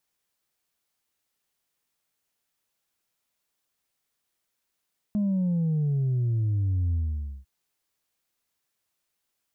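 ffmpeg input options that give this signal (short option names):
-f lavfi -i "aevalsrc='0.075*clip((2.3-t)/0.52,0,1)*tanh(1.19*sin(2*PI*210*2.3/log(65/210)*(exp(log(65/210)*t/2.3)-1)))/tanh(1.19)':d=2.3:s=44100"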